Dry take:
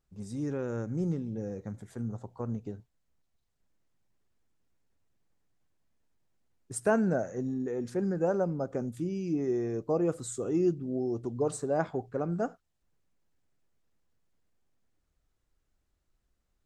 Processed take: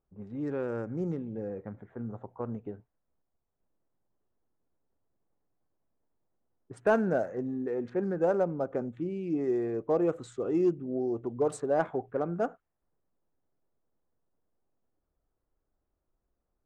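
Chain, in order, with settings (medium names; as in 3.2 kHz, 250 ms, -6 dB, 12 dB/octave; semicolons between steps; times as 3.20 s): local Wiener filter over 9 samples; level-controlled noise filter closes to 1 kHz, open at -26.5 dBFS; tone controls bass -8 dB, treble -6 dB; in parallel at -8 dB: hard clipper -23.5 dBFS, distortion -17 dB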